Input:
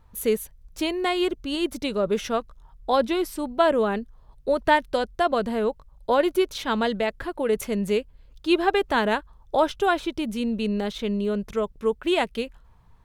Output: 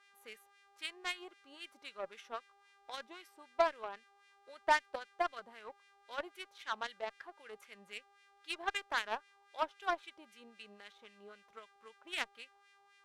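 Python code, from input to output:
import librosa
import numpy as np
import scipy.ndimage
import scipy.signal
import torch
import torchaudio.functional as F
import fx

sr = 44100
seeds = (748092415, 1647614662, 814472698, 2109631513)

y = F.preemphasis(torch.from_numpy(x), 0.8).numpy()
y = fx.dmg_buzz(y, sr, base_hz=400.0, harmonics=26, level_db=-55.0, tilt_db=-2, odd_only=False)
y = fx.wah_lfo(y, sr, hz=3.8, low_hz=760.0, high_hz=2200.0, q=2.0)
y = fx.cheby_harmonics(y, sr, harmonics=(7,), levels_db=(-20,), full_scale_db=-22.5)
y = y * librosa.db_to_amplitude(6.0)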